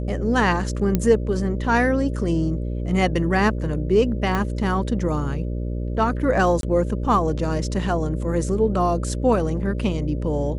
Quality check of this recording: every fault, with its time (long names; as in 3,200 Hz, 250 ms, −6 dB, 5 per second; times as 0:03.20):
mains buzz 60 Hz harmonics 10 −26 dBFS
0:00.95: click −7 dBFS
0:04.35: click −11 dBFS
0:06.61–0:06.63: drop-out 22 ms